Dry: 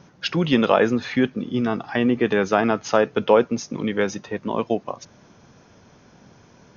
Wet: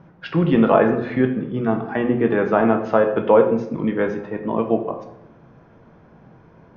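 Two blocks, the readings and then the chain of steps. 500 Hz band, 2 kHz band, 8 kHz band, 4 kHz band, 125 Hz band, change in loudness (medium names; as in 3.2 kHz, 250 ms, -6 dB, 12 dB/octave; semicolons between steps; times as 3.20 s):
+3.0 dB, -1.5 dB, no reading, under -10 dB, +4.0 dB, +2.0 dB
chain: low-pass 1.6 kHz 12 dB/octave; simulated room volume 210 m³, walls mixed, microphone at 0.63 m; trim +1 dB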